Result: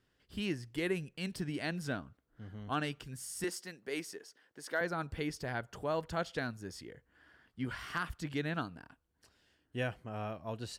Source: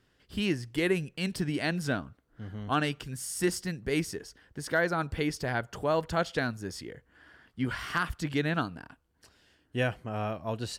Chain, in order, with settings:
0:03.44–0:04.81: high-pass filter 340 Hz 12 dB per octave
level −7 dB

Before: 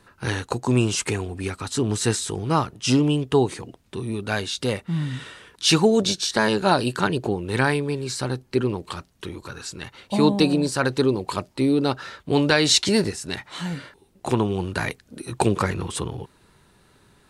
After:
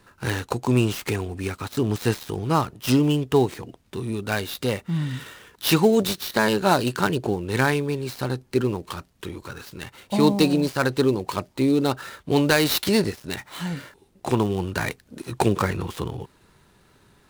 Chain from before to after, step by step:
gap after every zero crossing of 0.06 ms

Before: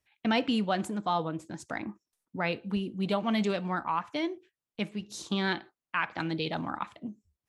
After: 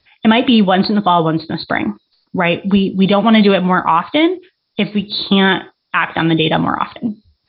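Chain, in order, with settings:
hearing-aid frequency compression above 3,400 Hz 4 to 1
boost into a limiter +20 dB
level −1 dB

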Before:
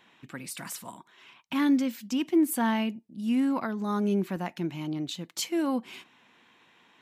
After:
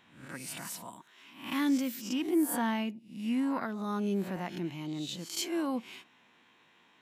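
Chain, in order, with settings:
peak hold with a rise ahead of every peak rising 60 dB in 0.50 s
0:00.92–0:02.08: high-shelf EQ 6,700 Hz +8 dB
level −5 dB

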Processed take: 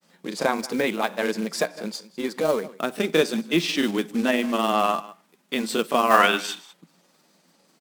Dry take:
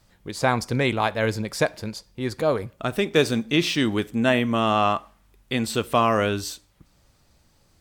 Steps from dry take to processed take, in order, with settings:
elliptic high-pass filter 170 Hz, stop band 40 dB
on a send: single-tap delay 170 ms −20.5 dB
on the sum: gain on a spectral selection 0:06.11–0:06.74, 640–3,700 Hz +12 dB
in parallel at 0 dB: downward compressor 16 to 1, threshold −30 dBFS, peak gain reduction 20.5 dB
on the sum: floating-point word with a short mantissa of 2 bits
granular cloud, spray 21 ms, pitch spread up and down by 0 semitones
level −1 dB

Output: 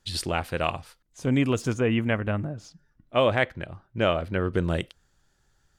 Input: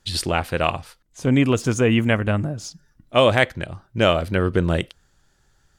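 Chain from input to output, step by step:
0:01.73–0:04.53: bass and treble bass −1 dB, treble −11 dB
level −5.5 dB

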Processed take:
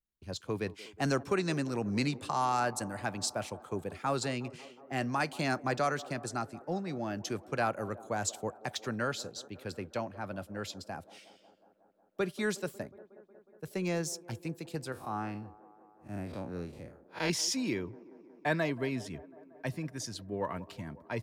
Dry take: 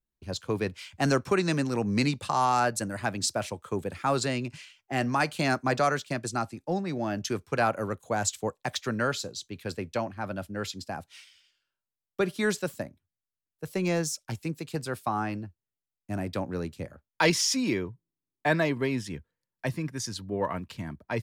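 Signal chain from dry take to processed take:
0:14.92–0:17.30: spectrum smeared in time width 96 ms
delay with a band-pass on its return 182 ms, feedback 74%, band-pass 530 Hz, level −17 dB
level −5.5 dB

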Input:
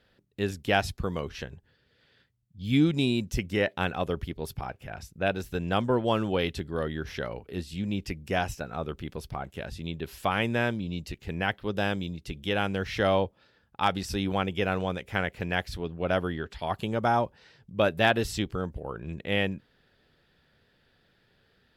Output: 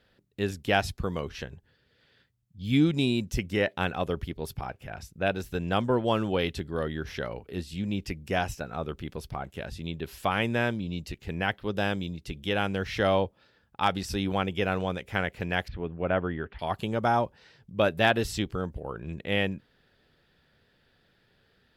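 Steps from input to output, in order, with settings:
0:15.68–0:16.59: low-pass filter 2,600 Hz 24 dB per octave

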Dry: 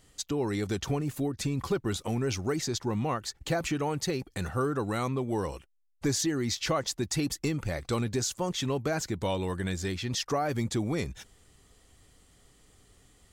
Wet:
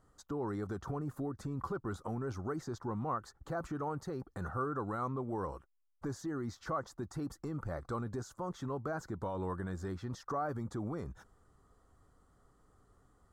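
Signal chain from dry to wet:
brickwall limiter −24.5 dBFS, peak gain reduction 6 dB
high shelf with overshoot 1,800 Hz −11.5 dB, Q 3
level −6 dB

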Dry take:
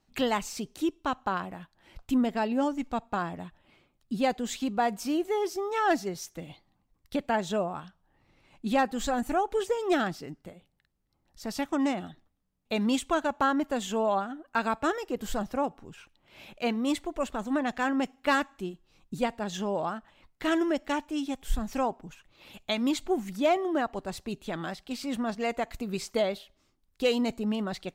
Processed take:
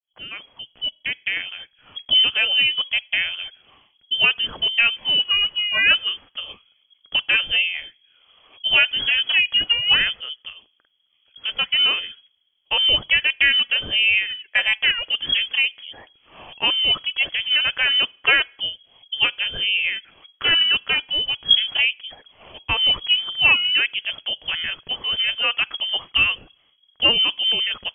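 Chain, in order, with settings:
fade in at the beginning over 1.97 s
voice inversion scrambler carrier 3,300 Hz
level +8.5 dB

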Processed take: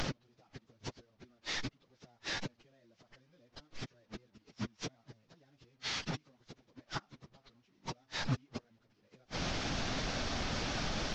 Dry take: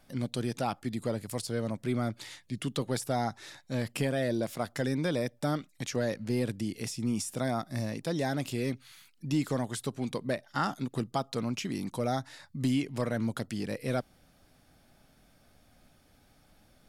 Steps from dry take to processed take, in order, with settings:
linear delta modulator 32 kbit/s, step −32 dBFS
gate with flip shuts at −27 dBFS, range −39 dB
time stretch by phase vocoder 0.66×
level +5.5 dB

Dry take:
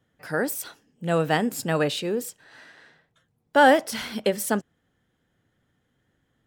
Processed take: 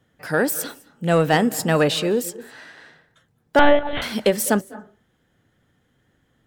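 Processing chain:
in parallel at −4.5 dB: sine wavefolder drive 6 dB, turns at −6.5 dBFS
on the sum: convolution reverb RT60 0.40 s, pre-delay 193 ms, DRR 18.5 dB
0:03.59–0:04.02: one-pitch LPC vocoder at 8 kHz 290 Hz
level −3 dB

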